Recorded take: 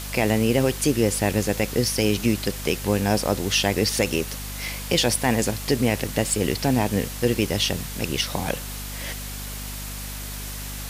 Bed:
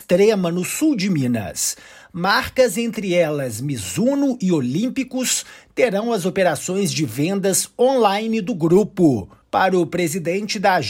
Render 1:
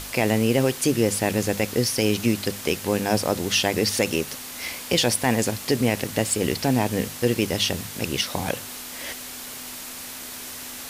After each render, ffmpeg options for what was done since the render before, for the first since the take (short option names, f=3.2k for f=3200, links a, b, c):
-af "bandreject=f=50:t=h:w=6,bandreject=f=100:t=h:w=6,bandreject=f=150:t=h:w=6,bandreject=f=200:t=h:w=6"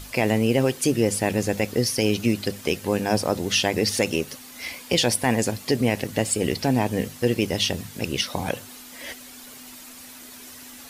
-af "afftdn=nr=9:nf=-37"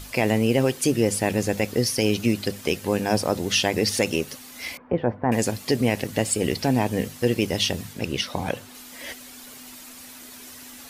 -filter_complex "[0:a]asettb=1/sr,asplit=3[a][b][c];[a]atrim=end=4.774[d];[b]atrim=start=4.77:end=5.32,asetpts=PTS-STARTPTS,afade=t=in:d=0.004:c=qsin,afade=t=out:st=0.546:d=0.004:c=qsin,lowpass=f=1.4k:w=0.5412,lowpass=f=1.4k:w=1.3066[e];[c]atrim=start=5.316[f];[d][e]acrossfade=d=0.004:c1=hsin:c2=qsin[g];[g][f]acrossfade=d=0.004:c1=qsin:c2=hsin,asettb=1/sr,asplit=3[h][i][j];[h]atrim=end=7.934[k];[i]atrim=start=7.93:end=8.75,asetpts=PTS-STARTPTS,afade=t=in:d=0.004:c=qsin,afade=t=out:st=0.816:d=0.004:c=qsin,highshelf=f=5.5k:g=-6.5[l];[j]atrim=start=8.746[m];[k][l]acrossfade=d=0.004:c1=hsin:c2=qsin[n];[n][m]acrossfade=d=0.004:c1=qsin:c2=hsin"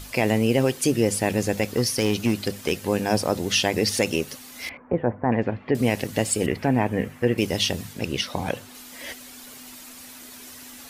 -filter_complex "[0:a]asettb=1/sr,asplit=3[a][b][c];[a]atrim=end=1.634[d];[b]atrim=start=1.63:end=2.72,asetpts=PTS-STARTPTS,afade=t=in:d=0.004:c=qsin,afade=t=out:st=1.086:d=0.004:c=qsin,volume=14.5dB,asoftclip=hard,volume=-14.5dB[e];[c]atrim=start=2.716[f];[d][e]acrossfade=d=0.004:c1=hsin:c2=qsin[g];[g][f]acrossfade=d=0.004:c1=qsin:c2=hsin,asettb=1/sr,asplit=3[h][i][j];[h]atrim=end=4.694[k];[i]atrim=start=4.69:end=5.75,asetpts=PTS-STARTPTS,afade=t=in:d=0.004:c=qsin,afade=t=out:st=1.056:d=0.004:c=qsin,lowpass=f=2.3k:w=0.5412,lowpass=f=2.3k:w=1.3066[l];[j]atrim=start=5.746[m];[k][l]acrossfade=d=0.004:c1=hsin:c2=qsin[n];[n][m]acrossfade=d=0.004:c1=qsin:c2=hsin,asettb=1/sr,asplit=3[o][p][q];[o]atrim=end=6.464[r];[p]atrim=start=6.46:end=7.38,asetpts=PTS-STARTPTS,afade=t=in:d=0.004:c=qsin,afade=t=out:st=0.916:d=0.004:c=qsin,highshelf=f=3k:t=q:w=1.5:g=-11.5[s];[q]atrim=start=7.376[t];[r][s]acrossfade=d=0.004:c1=hsin:c2=qsin[u];[u][t]acrossfade=d=0.004:c1=qsin:c2=hsin"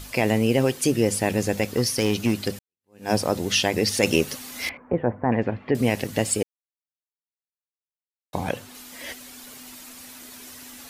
-filter_complex "[0:a]asplit=6[a][b][c][d][e][f];[a]atrim=end=2.59,asetpts=PTS-STARTPTS,afade=t=out:st=2.586:d=0.004:c=hsin[g];[b]atrim=start=2.59:end=4.032,asetpts=PTS-STARTPTS,afade=t=in:d=0.51:c=exp[h];[c]atrim=start=4.028:end=4.712,asetpts=PTS-STARTPTS,volume=4.5dB[i];[d]atrim=start=4.708:end=6.43,asetpts=PTS-STARTPTS,afade=t=out:st=1.718:d=0.004:c=hsin[j];[e]atrim=start=6.43:end=8.33,asetpts=PTS-STARTPTS,volume=0[k];[f]atrim=start=8.33,asetpts=PTS-STARTPTS,afade=t=in:d=0.004:c=hsin[l];[g][h]concat=n=2:v=0:a=1[m];[m][i]acrossfade=d=0.004:c1=hsin:c2=hsin[n];[j][k][l]concat=n=3:v=0:a=1[o];[n][o]acrossfade=d=0.004:c1=hsin:c2=hsin"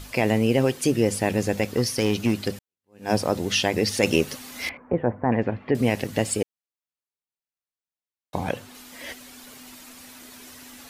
-af "highshelf=f=5.1k:g=-4.5"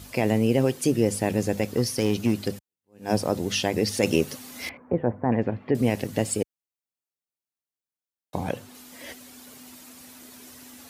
-af "highpass=67,equalizer=f=2.1k:w=0.4:g=-5"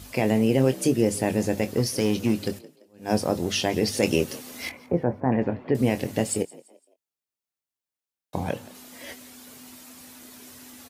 -filter_complex "[0:a]asplit=2[a][b];[b]adelay=23,volume=-10dB[c];[a][c]amix=inputs=2:normalize=0,asplit=4[d][e][f][g];[e]adelay=170,afreqshift=57,volume=-21dB[h];[f]adelay=340,afreqshift=114,volume=-29.6dB[i];[g]adelay=510,afreqshift=171,volume=-38.3dB[j];[d][h][i][j]amix=inputs=4:normalize=0"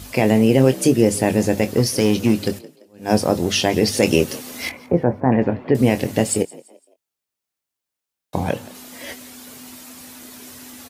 -af "volume=6.5dB,alimiter=limit=-1dB:level=0:latency=1"